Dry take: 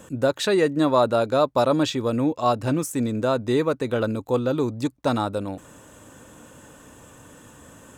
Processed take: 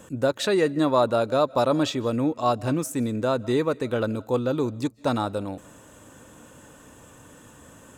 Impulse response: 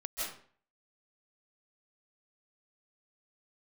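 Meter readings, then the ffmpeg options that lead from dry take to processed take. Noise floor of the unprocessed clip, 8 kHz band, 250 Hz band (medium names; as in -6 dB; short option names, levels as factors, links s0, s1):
-49 dBFS, -1.5 dB, -1.5 dB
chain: -filter_complex "[0:a]asplit=2[s0][s1];[1:a]atrim=start_sample=2205,afade=t=out:st=0.29:d=0.01,atrim=end_sample=13230[s2];[s1][s2]afir=irnorm=-1:irlink=0,volume=0.0631[s3];[s0][s3]amix=inputs=2:normalize=0,volume=0.794"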